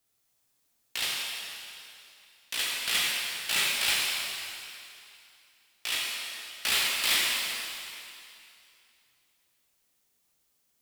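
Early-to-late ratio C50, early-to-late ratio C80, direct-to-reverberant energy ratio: −2.0 dB, −0.5 dB, −4.0 dB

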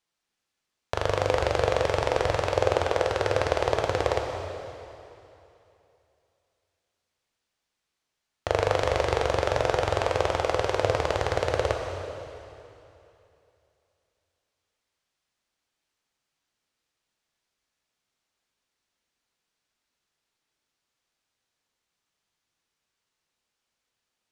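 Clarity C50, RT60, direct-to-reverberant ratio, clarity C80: 3.5 dB, 2.9 s, 2.0 dB, 4.5 dB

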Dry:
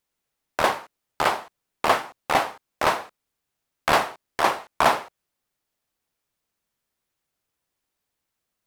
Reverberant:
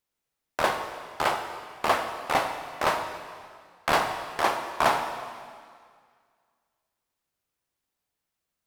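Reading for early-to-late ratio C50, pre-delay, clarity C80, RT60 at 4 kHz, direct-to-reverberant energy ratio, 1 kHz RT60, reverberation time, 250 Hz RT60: 7.0 dB, 8 ms, 8.5 dB, 1.9 s, 6.0 dB, 2.0 s, 2.0 s, 2.0 s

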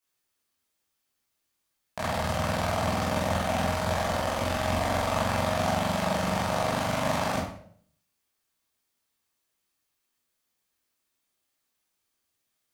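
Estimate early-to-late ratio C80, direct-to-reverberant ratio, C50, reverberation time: 7.5 dB, −7.5 dB, 3.0 dB, 0.55 s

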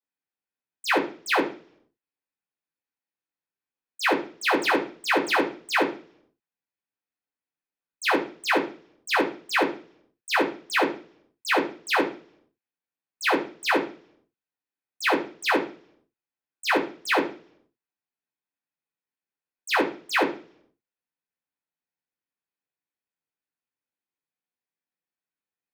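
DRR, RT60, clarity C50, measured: −4.0 dB, 0.45 s, 11.0 dB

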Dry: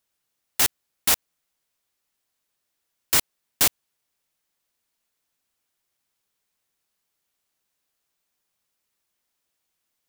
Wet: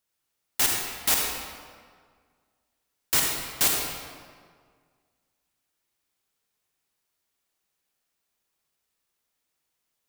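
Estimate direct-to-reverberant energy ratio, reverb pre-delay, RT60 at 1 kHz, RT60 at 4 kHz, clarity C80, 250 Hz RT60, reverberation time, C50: −0.5 dB, 38 ms, 1.8 s, 1.2 s, 2.5 dB, 1.9 s, 1.8 s, 0.5 dB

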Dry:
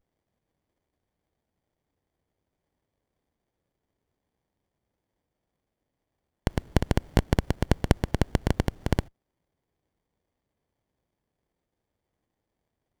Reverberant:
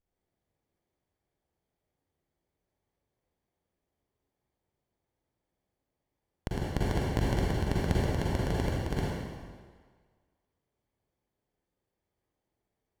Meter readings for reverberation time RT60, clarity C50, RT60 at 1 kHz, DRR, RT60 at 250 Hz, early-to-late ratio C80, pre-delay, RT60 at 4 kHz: 1.7 s, −4.5 dB, 1.7 s, −6.5 dB, 1.5 s, −1.5 dB, 39 ms, 1.4 s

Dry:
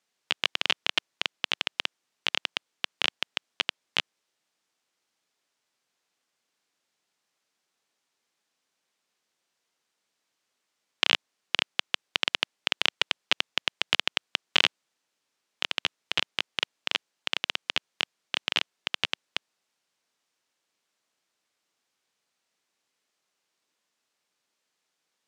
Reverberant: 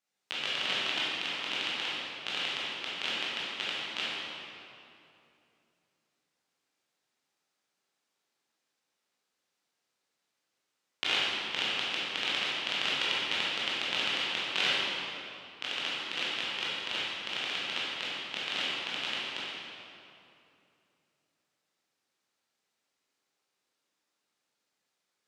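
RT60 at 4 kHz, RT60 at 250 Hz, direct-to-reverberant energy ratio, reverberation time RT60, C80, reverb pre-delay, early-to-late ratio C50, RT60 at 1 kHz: 1.9 s, 3.1 s, −9.0 dB, 2.7 s, −2.0 dB, 15 ms, −4.5 dB, 2.6 s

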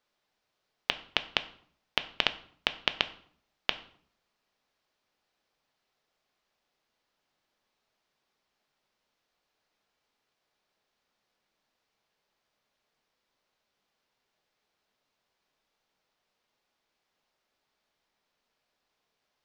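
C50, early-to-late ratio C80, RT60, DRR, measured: 16.0 dB, 19.5 dB, 0.55 s, 10.5 dB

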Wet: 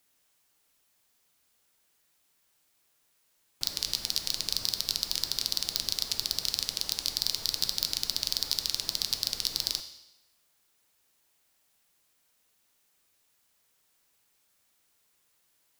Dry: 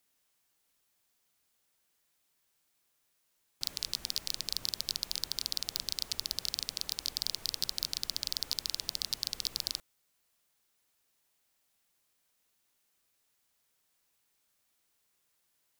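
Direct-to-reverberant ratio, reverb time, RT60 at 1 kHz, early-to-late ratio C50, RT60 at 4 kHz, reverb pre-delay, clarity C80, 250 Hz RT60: 7.5 dB, 0.95 s, 0.90 s, 11.0 dB, 0.90 s, 6 ms, 13.0 dB, 0.95 s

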